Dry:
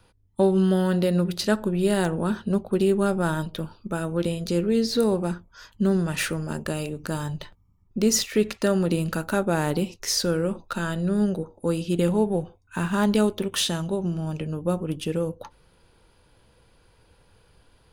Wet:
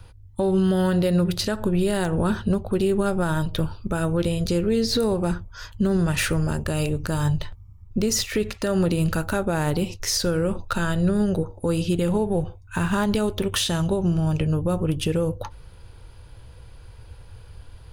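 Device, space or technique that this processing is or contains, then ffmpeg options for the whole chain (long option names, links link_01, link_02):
car stereo with a boomy subwoofer: -af "lowshelf=frequency=140:width_type=q:width=1.5:gain=10,alimiter=limit=-19.5dB:level=0:latency=1:release=144,volume=6.5dB"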